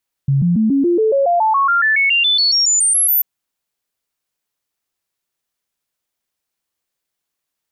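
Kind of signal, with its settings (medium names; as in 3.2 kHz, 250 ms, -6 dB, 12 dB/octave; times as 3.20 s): stepped sine 138 Hz up, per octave 3, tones 21, 0.14 s, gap 0.00 s -11 dBFS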